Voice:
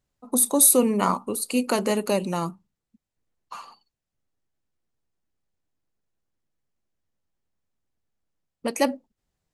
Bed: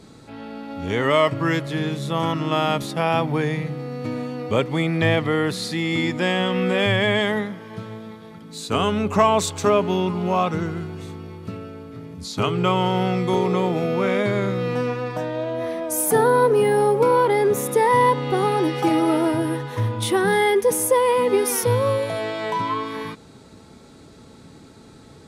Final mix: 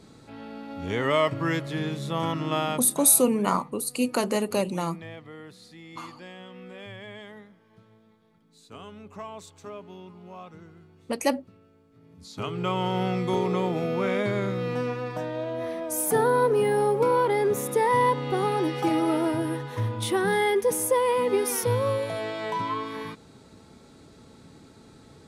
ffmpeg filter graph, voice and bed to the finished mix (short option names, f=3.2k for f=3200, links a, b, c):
-filter_complex "[0:a]adelay=2450,volume=-2dB[a];[1:a]volume=12.5dB,afade=t=out:st=2.57:d=0.5:silence=0.133352,afade=t=in:st=11.92:d=1.11:silence=0.133352[b];[a][b]amix=inputs=2:normalize=0"